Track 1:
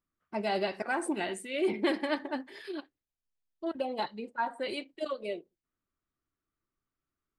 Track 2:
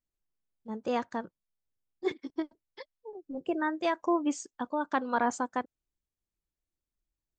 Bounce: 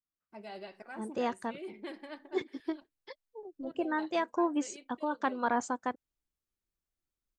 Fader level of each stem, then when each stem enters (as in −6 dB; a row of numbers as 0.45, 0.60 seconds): −14.5, −2.0 decibels; 0.00, 0.30 seconds